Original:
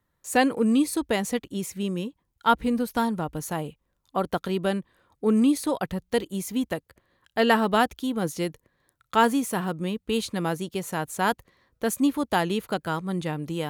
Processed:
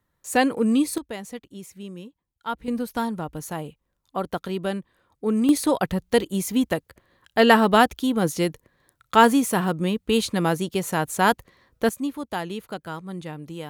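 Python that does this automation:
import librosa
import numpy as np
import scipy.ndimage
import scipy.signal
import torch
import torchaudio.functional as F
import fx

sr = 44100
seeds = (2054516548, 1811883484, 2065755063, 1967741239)

y = fx.gain(x, sr, db=fx.steps((0.0, 1.0), (0.98, -9.0), (2.68, -1.5), (5.49, 5.0), (11.89, -5.5)))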